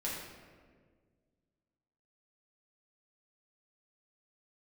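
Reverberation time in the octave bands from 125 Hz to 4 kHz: 2.4, 2.3, 2.0, 1.4, 1.4, 0.95 s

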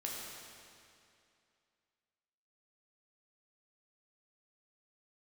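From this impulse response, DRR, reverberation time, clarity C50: -4.0 dB, 2.5 s, -1.0 dB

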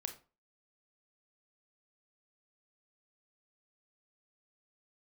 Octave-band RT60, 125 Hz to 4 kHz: 0.35, 0.35, 0.35, 0.35, 0.30, 0.25 s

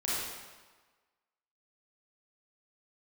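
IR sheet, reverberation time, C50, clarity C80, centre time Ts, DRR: 1.3 s, -4.0 dB, 0.0 dB, 0.108 s, -8.5 dB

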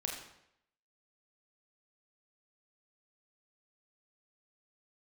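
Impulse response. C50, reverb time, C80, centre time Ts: 4.5 dB, 0.75 s, 6.5 dB, 41 ms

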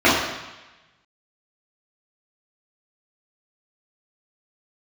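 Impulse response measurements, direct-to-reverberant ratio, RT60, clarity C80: -10.5 dB, 1.1 s, 4.0 dB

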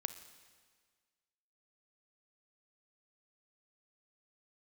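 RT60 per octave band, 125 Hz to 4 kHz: 1.6, 1.7, 1.7, 1.7, 1.6, 1.6 s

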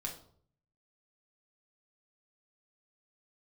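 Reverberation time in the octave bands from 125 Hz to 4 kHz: 0.90, 0.65, 0.60, 0.55, 0.35, 0.40 s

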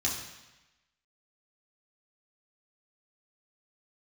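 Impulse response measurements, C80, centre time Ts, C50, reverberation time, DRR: 6.5 dB, 45 ms, 4.5 dB, 1.0 s, -4.0 dB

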